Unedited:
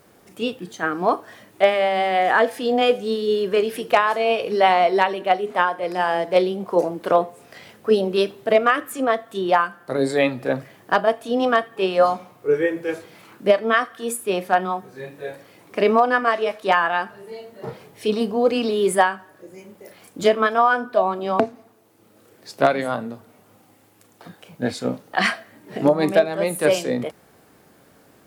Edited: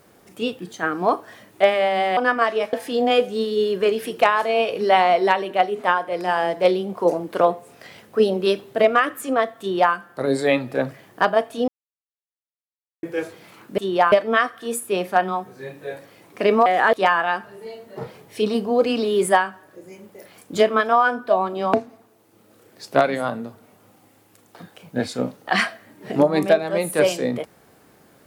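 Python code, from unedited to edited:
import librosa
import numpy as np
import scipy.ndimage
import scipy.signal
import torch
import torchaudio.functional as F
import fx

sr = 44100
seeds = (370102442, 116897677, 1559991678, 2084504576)

y = fx.edit(x, sr, fx.swap(start_s=2.17, length_s=0.27, other_s=16.03, other_length_s=0.56),
    fx.duplicate(start_s=9.31, length_s=0.34, to_s=13.49),
    fx.silence(start_s=11.39, length_s=1.35), tone=tone)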